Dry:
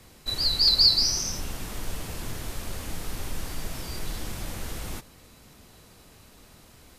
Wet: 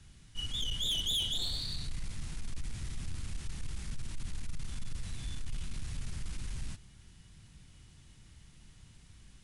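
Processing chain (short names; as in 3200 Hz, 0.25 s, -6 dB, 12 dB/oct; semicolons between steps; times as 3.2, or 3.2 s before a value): EQ curve 180 Hz 0 dB, 720 Hz -19 dB, 2900 Hz -8 dB; soft clip -29 dBFS, distortion -11 dB; speed mistake 45 rpm record played at 33 rpm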